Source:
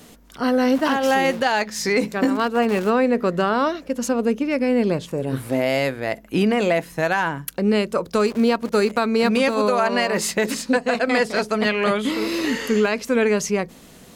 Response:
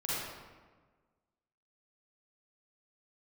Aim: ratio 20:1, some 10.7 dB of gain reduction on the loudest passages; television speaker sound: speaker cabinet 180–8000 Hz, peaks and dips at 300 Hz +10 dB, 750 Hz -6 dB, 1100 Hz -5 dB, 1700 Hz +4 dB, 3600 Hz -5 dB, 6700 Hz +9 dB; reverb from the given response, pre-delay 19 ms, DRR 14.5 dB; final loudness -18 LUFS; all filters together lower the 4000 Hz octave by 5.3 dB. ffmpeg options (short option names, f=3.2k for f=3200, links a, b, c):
-filter_complex "[0:a]equalizer=f=4k:t=o:g=-6,acompressor=threshold=-25dB:ratio=20,asplit=2[a][b];[1:a]atrim=start_sample=2205,adelay=19[c];[b][c]afir=irnorm=-1:irlink=0,volume=-20.5dB[d];[a][d]amix=inputs=2:normalize=0,highpass=f=180:w=0.5412,highpass=f=180:w=1.3066,equalizer=f=300:t=q:w=4:g=10,equalizer=f=750:t=q:w=4:g=-6,equalizer=f=1.1k:t=q:w=4:g=-5,equalizer=f=1.7k:t=q:w=4:g=4,equalizer=f=3.6k:t=q:w=4:g=-5,equalizer=f=6.7k:t=q:w=4:g=9,lowpass=f=8k:w=0.5412,lowpass=f=8k:w=1.3066,volume=10dB"